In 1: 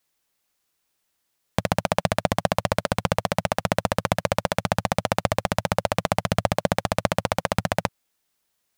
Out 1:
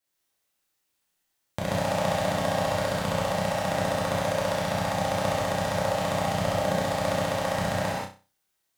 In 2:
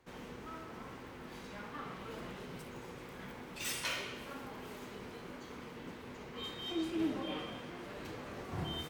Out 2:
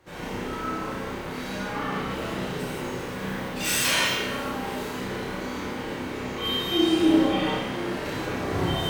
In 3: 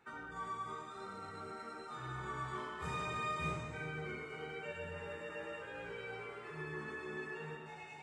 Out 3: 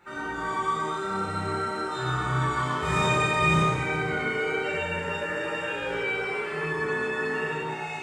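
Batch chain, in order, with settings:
flutter echo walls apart 5.4 m, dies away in 0.33 s; non-linear reverb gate 0.21 s flat, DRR -7 dB; match loudness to -27 LUFS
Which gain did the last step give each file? -11.0, +6.5, +8.0 dB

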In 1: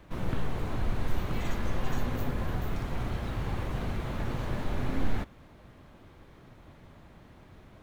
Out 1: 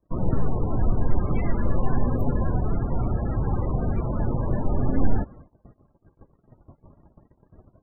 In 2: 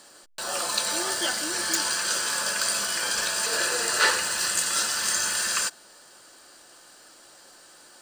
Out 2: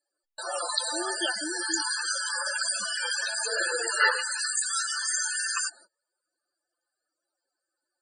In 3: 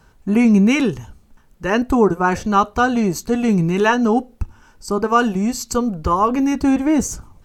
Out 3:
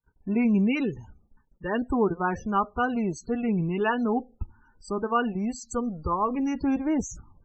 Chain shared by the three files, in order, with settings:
loudest bins only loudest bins 32; gate -50 dBFS, range -30 dB; match loudness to -27 LUFS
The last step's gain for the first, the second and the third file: +8.5, +1.5, -9.5 dB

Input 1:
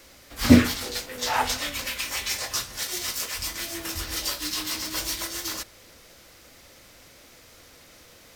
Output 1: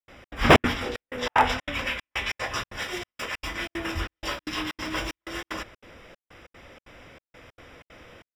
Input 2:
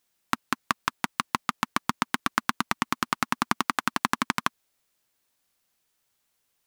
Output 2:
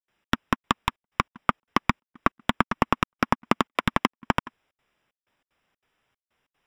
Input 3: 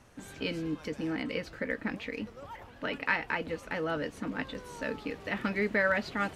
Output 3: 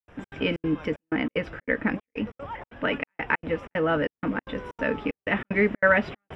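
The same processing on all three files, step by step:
wrapped overs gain 10.5 dB; polynomial smoothing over 25 samples; step gate ".xx.xxx.xxxx." 188 bpm -60 dB; match loudness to -27 LUFS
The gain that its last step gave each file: +5.5, +8.0, +8.5 dB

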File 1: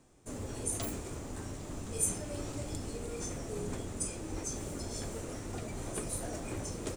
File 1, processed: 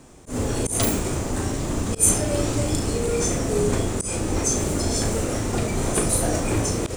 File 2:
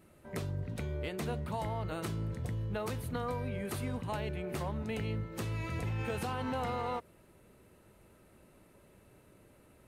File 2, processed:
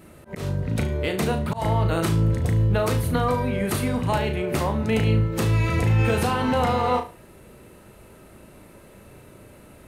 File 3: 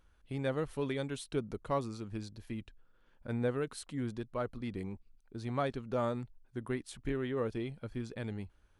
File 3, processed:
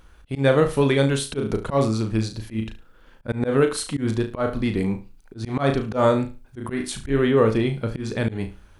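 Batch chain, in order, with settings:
flutter echo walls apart 6.2 m, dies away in 0.3 s; auto swell 0.126 s; match loudness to -23 LUFS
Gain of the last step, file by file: +15.5, +12.5, +16.0 dB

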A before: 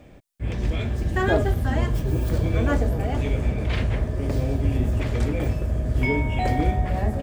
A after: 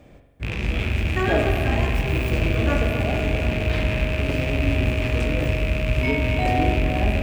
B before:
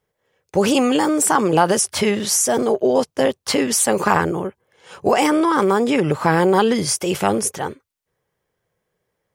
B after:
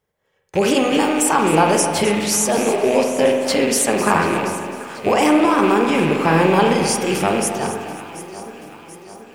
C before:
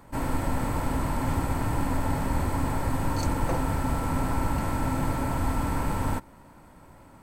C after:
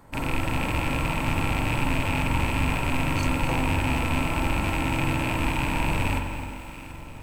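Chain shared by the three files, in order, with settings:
rattling part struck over -29 dBFS, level -17 dBFS; de-hum 248.8 Hz, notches 39; on a send: echo with dull and thin repeats by turns 0.367 s, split 1200 Hz, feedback 73%, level -12.5 dB; on the sum: spring tank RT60 1.2 s, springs 43 ms, chirp 20 ms, DRR 3.5 dB; lo-fi delay 0.262 s, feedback 35%, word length 7-bit, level -12 dB; gain -1 dB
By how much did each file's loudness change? +2.0, +1.0, +2.5 LU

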